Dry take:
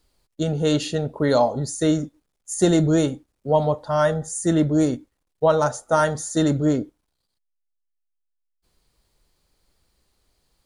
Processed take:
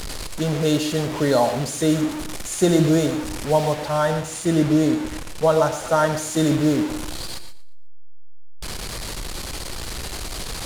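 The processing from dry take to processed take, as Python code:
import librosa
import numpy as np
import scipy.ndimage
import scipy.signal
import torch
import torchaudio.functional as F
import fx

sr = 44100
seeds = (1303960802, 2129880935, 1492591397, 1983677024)

y = fx.delta_mod(x, sr, bps=64000, step_db=-24.0)
y = fx.high_shelf(y, sr, hz=6800.0, db=-6.0, at=(3.74, 6.13))
y = fx.backlash(y, sr, play_db=-41.5)
y = fx.echo_feedback(y, sr, ms=117, feedback_pct=29, wet_db=-16)
y = fx.rev_gated(y, sr, seeds[0], gate_ms=160, shape='rising', drr_db=10.0)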